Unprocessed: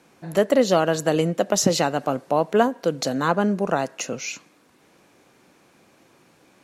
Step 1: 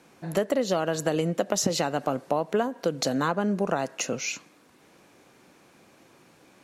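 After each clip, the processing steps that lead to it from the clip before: compressor 6:1, threshold -21 dBFS, peak gain reduction 9.5 dB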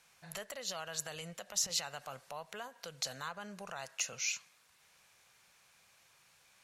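limiter -18 dBFS, peak gain reduction 9.5 dB; passive tone stack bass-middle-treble 10-0-10; gain -2 dB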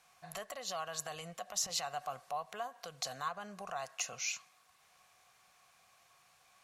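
small resonant body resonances 730/1100 Hz, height 14 dB, ringing for 45 ms; gain -2 dB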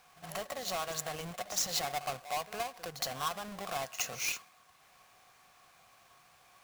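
half-waves squared off; pre-echo 65 ms -13.5 dB

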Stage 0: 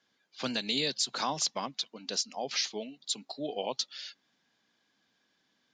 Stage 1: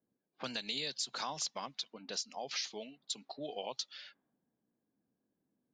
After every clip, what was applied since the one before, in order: low-pass opened by the level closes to 400 Hz, open at -31 dBFS; dynamic EQ 260 Hz, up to -6 dB, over -48 dBFS, Q 0.72; compressor 2:1, threshold -38 dBFS, peak gain reduction 7 dB; gain -1 dB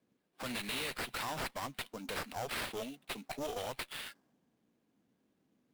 limiter -32 dBFS, peak gain reduction 8 dB; sample-rate reducer 6500 Hz, jitter 20%; one-sided clip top -48 dBFS, bottom -37 dBFS; gain +7.5 dB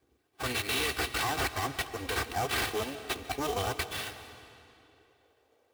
minimum comb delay 2.6 ms; high-pass sweep 68 Hz -> 540 Hz, 3.91–5.19; on a send at -11 dB: reverb RT60 2.7 s, pre-delay 0.1 s; on the sum: gain +7.5 dB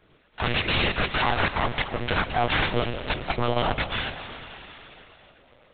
in parallel at -2 dB: limiter -27 dBFS, peak gain reduction 7 dB; on the sum: monotone LPC vocoder at 8 kHz 120 Hz; mismatched tape noise reduction encoder only; gain +4.5 dB

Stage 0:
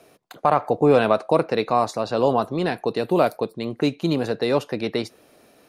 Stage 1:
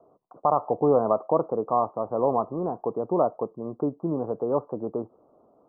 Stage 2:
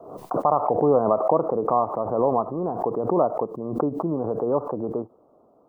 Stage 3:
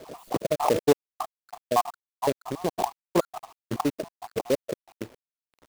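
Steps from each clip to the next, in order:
steep low-pass 1200 Hz 72 dB/oct; low shelf 350 Hz -6 dB; gain -2 dB
backwards sustainer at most 62 dB/s; gain +1.5 dB
random spectral dropouts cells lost 71%; companded quantiser 4-bit; gain +1 dB

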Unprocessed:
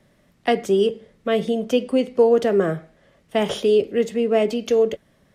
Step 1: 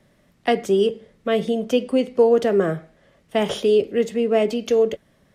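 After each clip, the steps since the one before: nothing audible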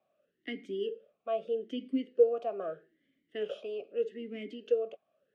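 vowel sweep a-i 0.8 Hz; gain -5 dB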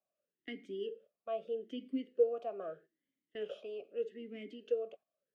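gate -52 dBFS, range -10 dB; gain -5.5 dB

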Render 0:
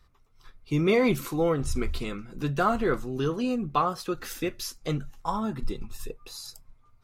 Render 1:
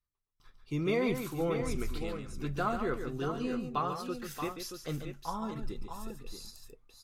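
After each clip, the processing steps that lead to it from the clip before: gate with hold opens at -49 dBFS; on a send: tapped delay 0.141/0.629 s -8/-8 dB; on the sum: gain -8 dB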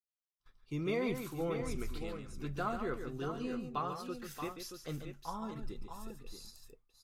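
expander -52 dBFS; gain -4.5 dB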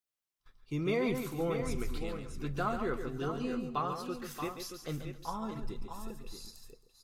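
echo with dull and thin repeats by turns 0.133 s, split 1200 Hz, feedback 51%, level -14 dB; gain +3 dB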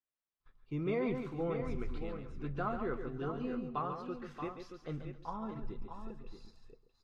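Bessel low-pass 2000 Hz, order 2; gain -2.5 dB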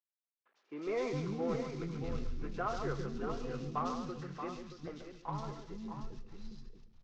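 CVSD 32 kbps; three bands offset in time mids, highs, lows 0.1/0.41 s, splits 290/2700 Hz; ending taper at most 140 dB/s; gain +1.5 dB

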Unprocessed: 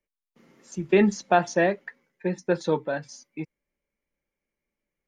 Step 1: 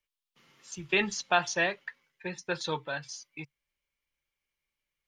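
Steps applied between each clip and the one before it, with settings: EQ curve 140 Hz 0 dB, 200 Hz -11 dB, 330 Hz -8 dB, 610 Hz -6 dB, 1100 Hz +4 dB, 2000 Hz +3 dB, 3000 Hz +12 dB, 7000 Hz +5 dB; gain -4 dB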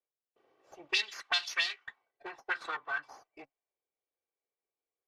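minimum comb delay 2.6 ms; auto-wah 520–4200 Hz, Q 2.7, up, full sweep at -25 dBFS; gain +7 dB

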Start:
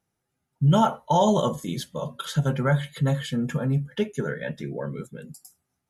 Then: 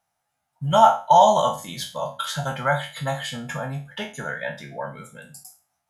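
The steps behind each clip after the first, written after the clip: spectral trails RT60 0.34 s; resonant low shelf 530 Hz -9.5 dB, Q 3; gain +2.5 dB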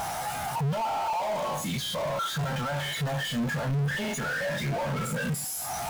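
infinite clipping; spectral expander 1.5:1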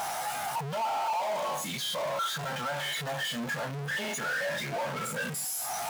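HPF 470 Hz 6 dB/oct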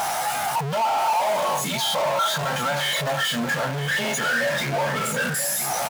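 echo 0.982 s -9.5 dB; gain +8.5 dB

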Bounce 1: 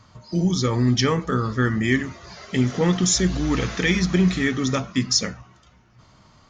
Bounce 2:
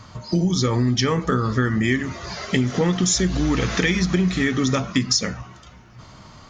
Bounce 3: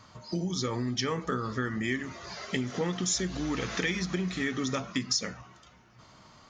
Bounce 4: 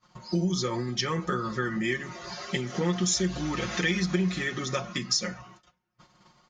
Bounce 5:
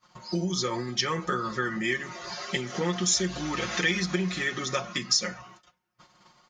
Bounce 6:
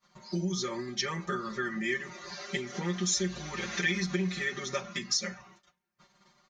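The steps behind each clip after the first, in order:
compressor, threshold -26 dBFS, peak gain reduction 11.5 dB; gain +9 dB
low shelf 140 Hz -10 dB; gain -8.5 dB
gate -53 dBFS, range -25 dB; comb 5.6 ms, depth 90%
low shelf 310 Hz -7.5 dB; gain +2.5 dB
comb 5.1 ms, depth 95%; gain -7.5 dB

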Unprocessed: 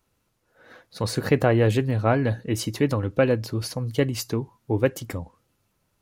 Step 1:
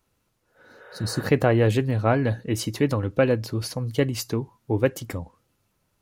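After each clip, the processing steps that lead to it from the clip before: spectral repair 0.66–1.19, 370–3800 Hz both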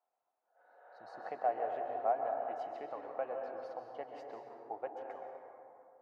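compressor 2:1, threshold -23 dBFS, peak gain reduction 5.5 dB; ladder band-pass 760 Hz, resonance 80%; plate-style reverb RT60 2.6 s, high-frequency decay 0.4×, pre-delay 0.115 s, DRR 2 dB; gain -2 dB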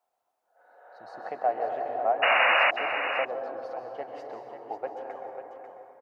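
painted sound noise, 2.22–2.71, 500–2900 Hz -28 dBFS; on a send: echo 0.543 s -8.5 dB; on the sum: gain +6.5 dB

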